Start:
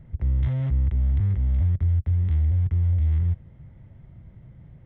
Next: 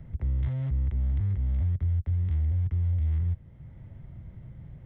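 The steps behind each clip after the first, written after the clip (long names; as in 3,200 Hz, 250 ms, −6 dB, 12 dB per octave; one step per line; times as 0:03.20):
multiband upward and downward compressor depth 40%
level −5 dB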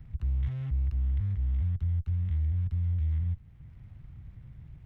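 lower of the sound and its delayed copy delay 0.74 ms
parametric band 430 Hz −11 dB 2.7 octaves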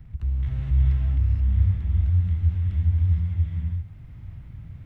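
reverb whose tail is shaped and stops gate 500 ms rising, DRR −4 dB
level +2.5 dB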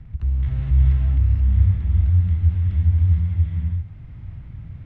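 high-frequency loss of the air 100 metres
level +4 dB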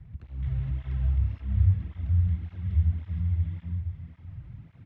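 single-tap delay 468 ms −10 dB
through-zero flanger with one copy inverted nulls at 1.8 Hz, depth 4.7 ms
level −4 dB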